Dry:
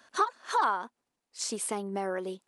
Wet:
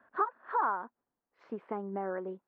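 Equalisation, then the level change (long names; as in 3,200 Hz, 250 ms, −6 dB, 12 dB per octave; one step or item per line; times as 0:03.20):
low-pass filter 1,700 Hz 24 dB per octave
−3.0 dB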